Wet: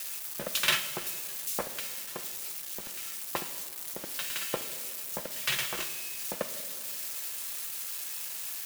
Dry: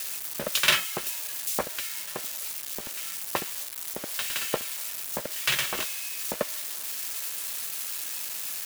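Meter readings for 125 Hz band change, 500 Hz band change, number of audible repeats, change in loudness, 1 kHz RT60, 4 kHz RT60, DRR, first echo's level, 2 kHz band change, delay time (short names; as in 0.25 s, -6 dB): -3.5 dB, -4.5 dB, none, -4.0 dB, 1.7 s, 1.1 s, 8.0 dB, none, -4.5 dB, none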